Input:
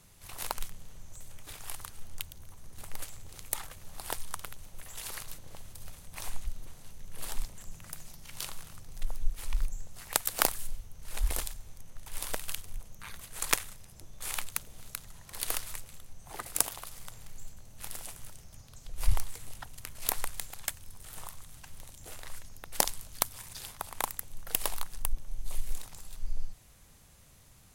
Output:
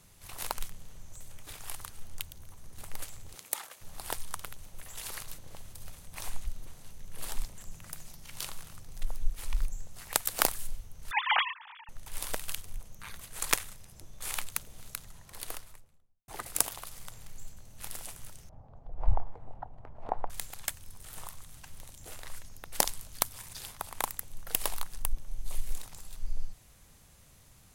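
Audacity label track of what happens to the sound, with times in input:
3.350000	3.800000	high-pass filter 200 Hz → 510 Hz
11.110000	11.890000	three sine waves on the formant tracks
14.950000	16.280000	fade out and dull
18.490000	20.300000	low-pass with resonance 780 Hz, resonance Q 2.8

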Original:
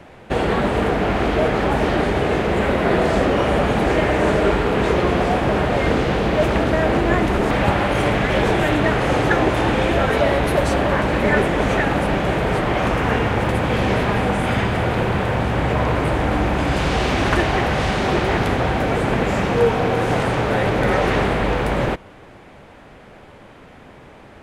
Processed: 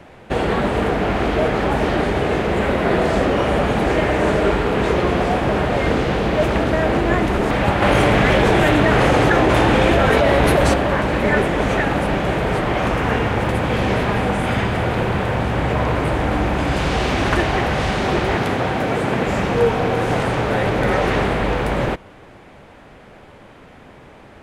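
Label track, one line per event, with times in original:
7.820000	10.740000	envelope flattener amount 100%
18.350000	19.280000	high-pass filter 100 Hz

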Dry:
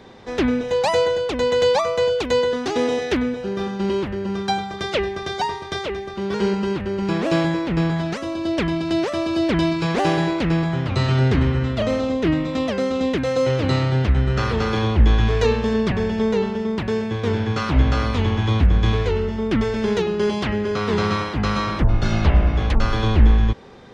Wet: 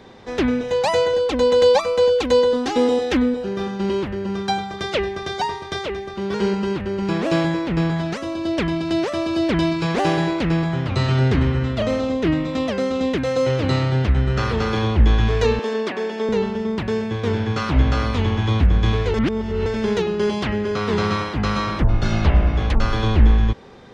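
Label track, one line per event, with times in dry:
1.130000	3.440000	comb filter 3.8 ms
15.590000	16.290000	high-pass filter 280 Hz 24 dB per octave
19.140000	19.660000	reverse

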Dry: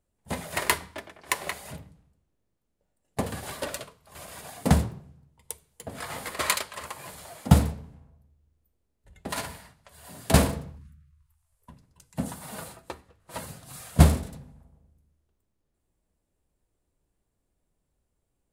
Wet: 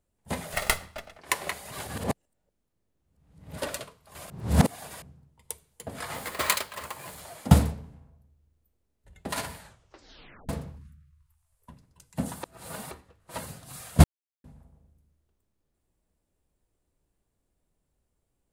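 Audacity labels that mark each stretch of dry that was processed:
0.530000	1.190000	lower of the sound and its delayed copy delay 1.5 ms
1.720000	3.580000	reverse
4.300000	5.020000	reverse
6.140000	7.210000	bad sample-rate conversion rate divided by 2×, down none, up hold
9.570000	9.570000	tape stop 0.92 s
12.430000	12.910000	reverse
14.040000	14.440000	silence

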